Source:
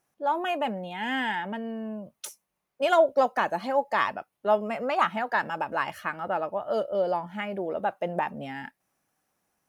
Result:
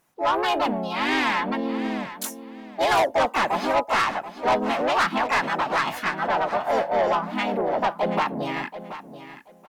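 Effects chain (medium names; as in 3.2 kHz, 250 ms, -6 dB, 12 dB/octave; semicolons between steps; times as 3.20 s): harmony voices +3 st 0 dB, +7 st -5 dB; saturation -21 dBFS, distortion -8 dB; feedback delay 731 ms, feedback 20%, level -13 dB; trim +4.5 dB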